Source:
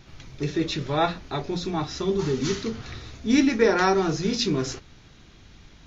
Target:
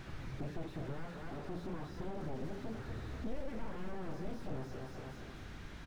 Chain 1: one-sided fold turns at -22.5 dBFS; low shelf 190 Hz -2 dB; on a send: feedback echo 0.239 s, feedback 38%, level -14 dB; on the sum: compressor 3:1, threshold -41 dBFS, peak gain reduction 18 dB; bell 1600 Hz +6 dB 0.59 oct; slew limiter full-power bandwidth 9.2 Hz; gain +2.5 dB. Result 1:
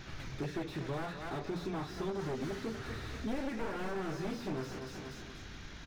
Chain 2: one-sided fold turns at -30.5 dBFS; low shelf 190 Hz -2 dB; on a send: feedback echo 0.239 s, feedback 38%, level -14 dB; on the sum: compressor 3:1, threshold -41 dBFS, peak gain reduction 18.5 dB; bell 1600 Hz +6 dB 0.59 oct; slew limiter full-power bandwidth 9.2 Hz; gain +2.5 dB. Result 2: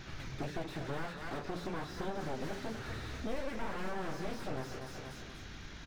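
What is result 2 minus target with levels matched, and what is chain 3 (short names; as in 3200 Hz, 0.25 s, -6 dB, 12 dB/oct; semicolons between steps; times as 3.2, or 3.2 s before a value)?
slew limiter: distortion -6 dB
one-sided fold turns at -30.5 dBFS; low shelf 190 Hz -2 dB; on a send: feedback echo 0.239 s, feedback 38%, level -14 dB; on the sum: compressor 3:1, threshold -41 dBFS, peak gain reduction 18.5 dB; bell 1600 Hz +6 dB 0.59 oct; slew limiter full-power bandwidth 3 Hz; gain +2.5 dB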